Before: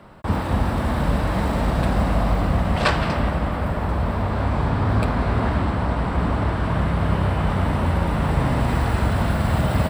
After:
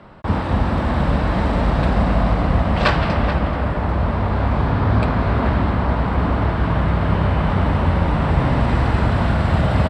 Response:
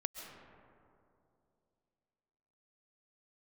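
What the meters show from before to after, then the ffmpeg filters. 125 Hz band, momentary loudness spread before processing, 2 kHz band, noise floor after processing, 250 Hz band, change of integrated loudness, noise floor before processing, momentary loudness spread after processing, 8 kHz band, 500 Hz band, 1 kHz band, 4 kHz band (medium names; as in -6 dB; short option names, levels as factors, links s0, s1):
+3.0 dB, 3 LU, +3.0 dB, -22 dBFS, +3.0 dB, +3.0 dB, -25 dBFS, 3 LU, no reading, +3.0 dB, +3.0 dB, +1.5 dB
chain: -filter_complex "[0:a]lowpass=5000,asplit=2[s0][s1];[s1]adelay=431.5,volume=0.355,highshelf=f=4000:g=-9.71[s2];[s0][s2]amix=inputs=2:normalize=0,volume=1.33"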